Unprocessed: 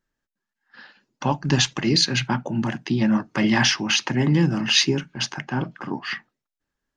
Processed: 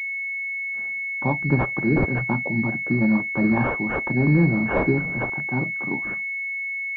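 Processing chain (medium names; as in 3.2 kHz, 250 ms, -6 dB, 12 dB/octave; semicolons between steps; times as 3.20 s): 4.22–5.30 s: jump at every zero crossing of -27.5 dBFS; class-D stage that switches slowly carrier 2.2 kHz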